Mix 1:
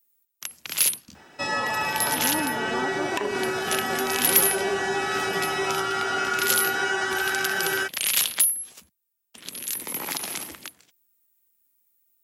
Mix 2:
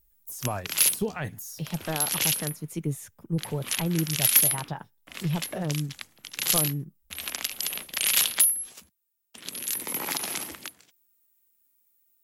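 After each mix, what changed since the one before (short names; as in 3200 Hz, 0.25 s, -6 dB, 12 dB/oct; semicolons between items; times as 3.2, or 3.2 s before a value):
speech: unmuted; second sound: muted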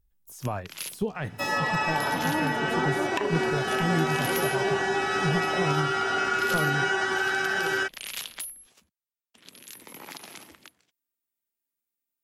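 first sound -9.0 dB; second sound: unmuted; master: add high shelf 7900 Hz -11 dB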